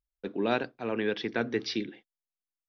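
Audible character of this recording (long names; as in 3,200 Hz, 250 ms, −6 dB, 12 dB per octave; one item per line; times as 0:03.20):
background noise floor −93 dBFS
spectral slope −3.0 dB per octave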